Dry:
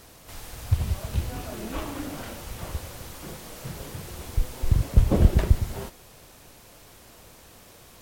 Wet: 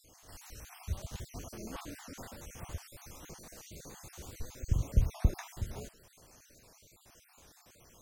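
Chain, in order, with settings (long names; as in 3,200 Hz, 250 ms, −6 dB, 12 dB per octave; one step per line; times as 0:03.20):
time-frequency cells dropped at random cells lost 46%
parametric band 6,300 Hz +10.5 dB 0.25 octaves
wow of a warped record 78 rpm, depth 160 cents
level −8.5 dB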